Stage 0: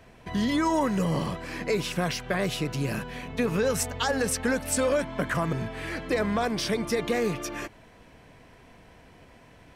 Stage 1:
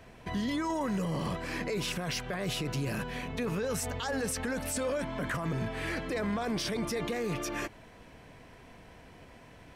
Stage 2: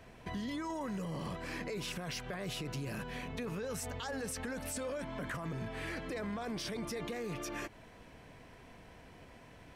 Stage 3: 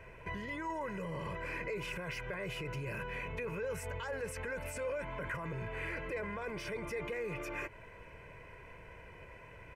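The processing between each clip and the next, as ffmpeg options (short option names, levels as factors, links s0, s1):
-af "alimiter=level_in=1.12:limit=0.0631:level=0:latency=1:release=15,volume=0.891"
-af "acompressor=threshold=0.0141:ratio=2,volume=0.75"
-filter_complex "[0:a]highshelf=f=3000:t=q:w=3:g=-7,aecho=1:1:2:0.68,asplit=2[s0][s1];[s1]alimiter=level_in=3.55:limit=0.0631:level=0:latency=1:release=22,volume=0.282,volume=0.794[s2];[s0][s2]amix=inputs=2:normalize=0,volume=0.562"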